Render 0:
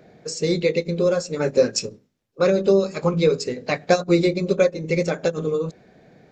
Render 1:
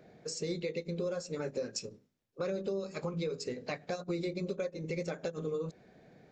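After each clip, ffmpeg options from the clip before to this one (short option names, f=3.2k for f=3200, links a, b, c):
-af "alimiter=limit=-14.5dB:level=0:latency=1:release=232,acompressor=threshold=-31dB:ratio=1.5,volume=-7.5dB"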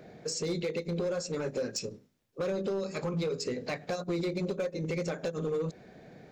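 -filter_complex "[0:a]asplit=2[a][b];[b]alimiter=level_in=10.5dB:limit=-24dB:level=0:latency=1:release=43,volume=-10.5dB,volume=2dB[c];[a][c]amix=inputs=2:normalize=0,asoftclip=type=hard:threshold=-26.5dB"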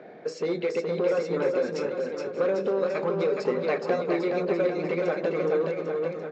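-filter_complex "[0:a]highpass=320,lowpass=2.2k,asplit=2[a][b];[b]aecho=0:1:420|798|1138|1444|1720:0.631|0.398|0.251|0.158|0.1[c];[a][c]amix=inputs=2:normalize=0,volume=7.5dB"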